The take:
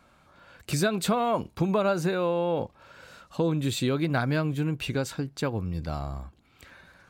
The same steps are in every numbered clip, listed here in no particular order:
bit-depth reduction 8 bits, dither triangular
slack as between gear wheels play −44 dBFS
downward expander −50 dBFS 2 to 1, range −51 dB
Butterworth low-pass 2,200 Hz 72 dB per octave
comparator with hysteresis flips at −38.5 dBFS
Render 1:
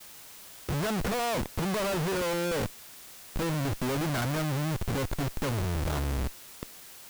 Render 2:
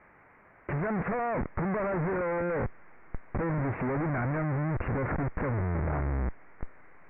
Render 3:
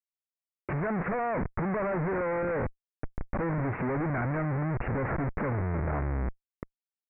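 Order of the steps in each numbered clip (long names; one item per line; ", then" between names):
slack as between gear wheels, then Butterworth low-pass, then comparator with hysteresis, then bit-depth reduction, then downward expander
comparator with hysteresis, then slack as between gear wheels, then downward expander, then bit-depth reduction, then Butterworth low-pass
slack as between gear wheels, then downward expander, then bit-depth reduction, then comparator with hysteresis, then Butterworth low-pass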